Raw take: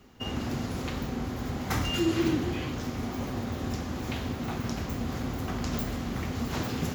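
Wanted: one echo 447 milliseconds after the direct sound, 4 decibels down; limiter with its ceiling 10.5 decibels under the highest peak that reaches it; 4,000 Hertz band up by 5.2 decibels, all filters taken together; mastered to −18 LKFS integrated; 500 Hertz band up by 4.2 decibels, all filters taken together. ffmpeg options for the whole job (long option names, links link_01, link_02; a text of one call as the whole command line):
ffmpeg -i in.wav -af "equalizer=frequency=500:width_type=o:gain=6,equalizer=frequency=4000:width_type=o:gain=7.5,alimiter=limit=-23dB:level=0:latency=1,aecho=1:1:447:0.631,volume=13.5dB" out.wav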